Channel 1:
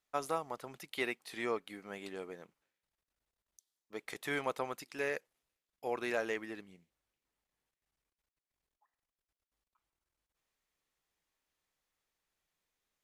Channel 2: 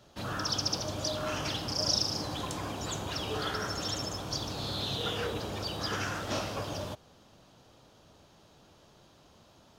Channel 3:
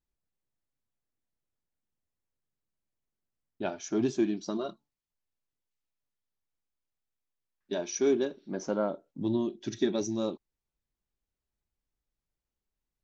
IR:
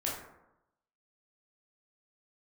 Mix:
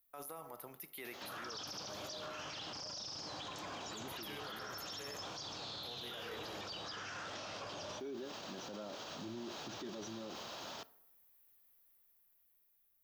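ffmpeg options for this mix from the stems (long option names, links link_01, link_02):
-filter_complex "[0:a]aexciter=amount=8.1:drive=9.3:freq=11000,volume=-6.5dB,asplit=2[link_01][link_02];[link_02]volume=-14.5dB[link_03];[1:a]highpass=frequency=800:poles=1,acompressor=mode=upward:threshold=-47dB:ratio=2.5,lowpass=frequency=6600:width=0.5412,lowpass=frequency=6600:width=1.3066,adelay=1050,volume=0.5dB,asplit=2[link_04][link_05];[link_05]volume=-13dB[link_06];[2:a]volume=-8.5dB[link_07];[link_01][link_04]amix=inputs=2:normalize=0,dynaudnorm=framelen=730:gausssize=5:maxgain=9dB,alimiter=limit=-18dB:level=0:latency=1,volume=0dB[link_08];[3:a]atrim=start_sample=2205[link_09];[link_03][link_06]amix=inputs=2:normalize=0[link_10];[link_10][link_09]afir=irnorm=-1:irlink=0[link_11];[link_07][link_08][link_11]amix=inputs=3:normalize=0,acrossover=split=160[link_12][link_13];[link_13]acompressor=threshold=-33dB:ratio=6[link_14];[link_12][link_14]amix=inputs=2:normalize=0,alimiter=level_in=13.5dB:limit=-24dB:level=0:latency=1:release=26,volume=-13.5dB"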